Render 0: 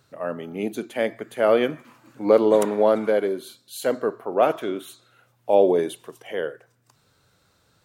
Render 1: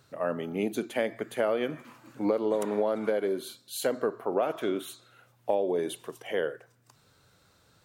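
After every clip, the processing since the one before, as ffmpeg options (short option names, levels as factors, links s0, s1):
-af "acompressor=threshold=0.0708:ratio=12"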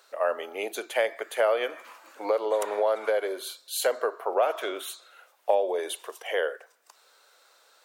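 -af "highpass=f=500:w=0.5412,highpass=f=500:w=1.3066,volume=1.88"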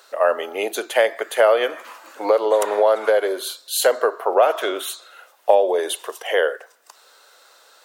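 -af "bandreject=f=2300:w=15,volume=2.66"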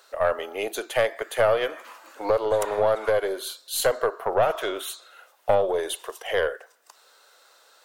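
-af "aeval=exprs='(tanh(2*val(0)+0.4)-tanh(0.4))/2':c=same,volume=0.668"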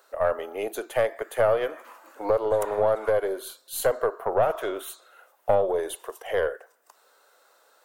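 -af "equalizer=f=4100:w=0.53:g=-9.5"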